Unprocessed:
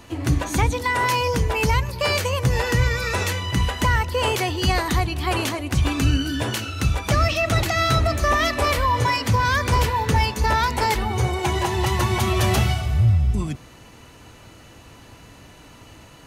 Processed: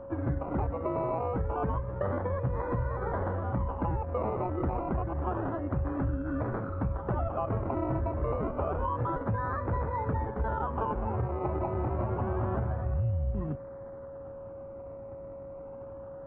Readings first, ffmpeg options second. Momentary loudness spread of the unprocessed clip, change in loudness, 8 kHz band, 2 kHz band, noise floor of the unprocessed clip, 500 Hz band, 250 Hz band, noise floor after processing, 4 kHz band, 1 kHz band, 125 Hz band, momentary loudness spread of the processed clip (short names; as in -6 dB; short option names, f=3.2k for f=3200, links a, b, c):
4 LU, -11.0 dB, under -40 dB, -21.5 dB, -47 dBFS, -6.5 dB, -7.5 dB, -43 dBFS, under -40 dB, -11.0 dB, -10.0 dB, 12 LU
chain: -af "acrusher=samples=21:mix=1:aa=0.000001:lfo=1:lforange=12.6:lforate=0.28,acompressor=threshold=-23dB:ratio=6,lowpass=f=1.4k:w=0.5412,lowpass=f=1.4k:w=1.3066,aeval=exprs='val(0)+0.0141*sin(2*PI*550*n/s)':c=same,volume=-4dB"